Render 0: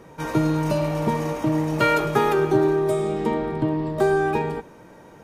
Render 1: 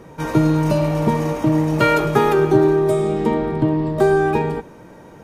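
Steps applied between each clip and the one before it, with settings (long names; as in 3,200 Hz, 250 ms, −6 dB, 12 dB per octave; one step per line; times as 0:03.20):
low-shelf EQ 430 Hz +4 dB
level +2.5 dB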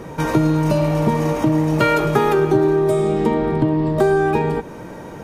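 downward compressor 2 to 1, threshold −28 dBFS, peak gain reduction 10.5 dB
level +8 dB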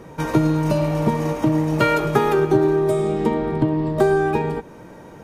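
expander for the loud parts 1.5 to 1, over −26 dBFS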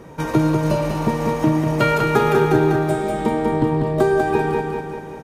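repeating echo 195 ms, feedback 56%, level −4 dB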